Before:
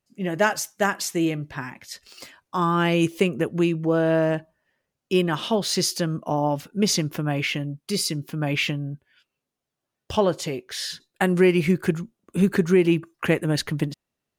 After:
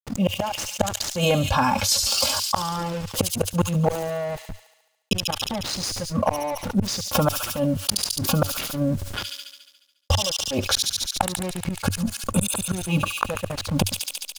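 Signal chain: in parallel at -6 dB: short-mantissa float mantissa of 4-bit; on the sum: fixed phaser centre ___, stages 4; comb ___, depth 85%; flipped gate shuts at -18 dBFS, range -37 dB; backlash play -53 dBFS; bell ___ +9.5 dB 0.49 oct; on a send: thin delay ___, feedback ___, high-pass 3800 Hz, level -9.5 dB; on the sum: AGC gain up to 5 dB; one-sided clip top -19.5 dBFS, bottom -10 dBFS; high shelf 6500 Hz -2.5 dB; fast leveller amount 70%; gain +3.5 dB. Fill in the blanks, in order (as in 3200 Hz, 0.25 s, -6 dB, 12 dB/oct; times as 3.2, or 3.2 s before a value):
790 Hz, 3.6 ms, 96 Hz, 71 ms, 64%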